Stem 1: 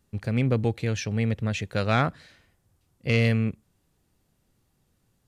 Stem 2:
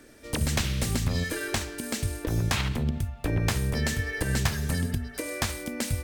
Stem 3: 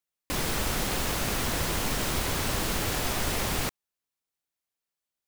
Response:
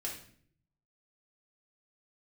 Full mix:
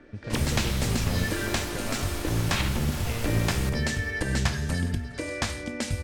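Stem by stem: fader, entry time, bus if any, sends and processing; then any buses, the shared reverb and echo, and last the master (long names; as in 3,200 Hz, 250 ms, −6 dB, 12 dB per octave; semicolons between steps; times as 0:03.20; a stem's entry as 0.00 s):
−2.0 dB, 0.00 s, no send, no echo send, downward compressor, threshold −32 dBFS, peak gain reduction 13.5 dB
−1.5 dB, 0.00 s, send −8 dB, echo send −21 dB, low-pass filter 8,000 Hz 12 dB per octave
−9.5 dB, 0.00 s, send −4.5 dB, echo send −13.5 dB, no processing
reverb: on, RT60 0.55 s, pre-delay 3 ms
echo: repeating echo 413 ms, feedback 56%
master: low-pass that shuts in the quiet parts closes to 2,300 Hz, open at −25.5 dBFS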